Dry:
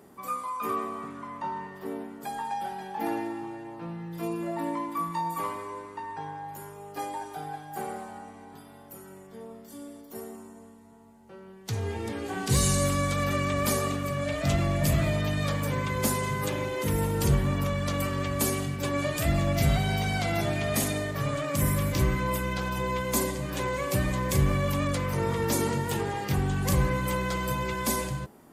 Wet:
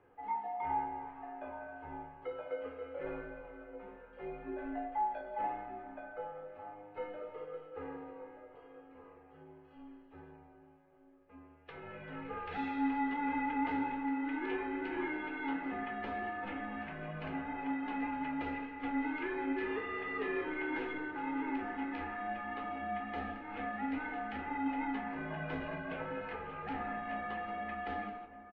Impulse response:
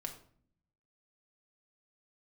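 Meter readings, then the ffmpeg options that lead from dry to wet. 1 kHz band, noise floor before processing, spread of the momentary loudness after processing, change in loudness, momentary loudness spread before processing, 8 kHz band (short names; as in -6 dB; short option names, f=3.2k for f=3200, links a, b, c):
-5.5 dB, -50 dBFS, 15 LU, -10.0 dB, 16 LU, under -40 dB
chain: -filter_complex "[0:a]highpass=f=590:t=q:w=0.5412,highpass=f=590:t=q:w=1.307,lowpass=f=2.9k:t=q:w=0.5176,lowpass=f=2.9k:t=q:w=0.7071,lowpass=f=2.9k:t=q:w=1.932,afreqshift=-300,asplit=2[a][b];[b]adelay=1224,volume=-12dB,highshelf=f=4k:g=-27.6[c];[a][c]amix=inputs=2:normalize=0[d];[1:a]atrim=start_sample=2205,asetrate=79380,aresample=44100[e];[d][e]afir=irnorm=-1:irlink=0,volume=1.5dB"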